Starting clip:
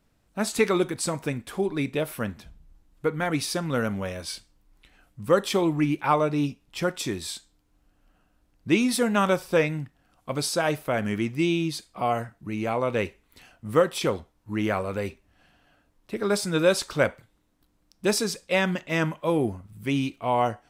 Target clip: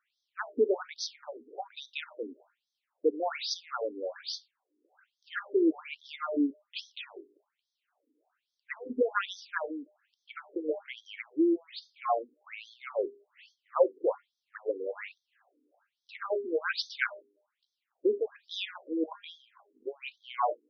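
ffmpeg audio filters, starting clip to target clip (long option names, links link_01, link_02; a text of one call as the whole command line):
ffmpeg -i in.wav -af "bandreject=frequency=202.3:width_type=h:width=4,bandreject=frequency=404.6:width_type=h:width=4,bandreject=frequency=606.9:width_type=h:width=4,bandreject=frequency=809.2:width_type=h:width=4,bandreject=frequency=1011.5:width_type=h:width=4,bandreject=frequency=1213.8:width_type=h:width=4,bandreject=frequency=1416.1:width_type=h:width=4,bandreject=frequency=1618.4:width_type=h:width=4,bandreject=frequency=1820.7:width_type=h:width=4,afftfilt=real='re*between(b*sr/1024,330*pow(4600/330,0.5+0.5*sin(2*PI*1.2*pts/sr))/1.41,330*pow(4600/330,0.5+0.5*sin(2*PI*1.2*pts/sr))*1.41)':imag='im*between(b*sr/1024,330*pow(4600/330,0.5+0.5*sin(2*PI*1.2*pts/sr))/1.41,330*pow(4600/330,0.5+0.5*sin(2*PI*1.2*pts/sr))*1.41)':win_size=1024:overlap=0.75" out.wav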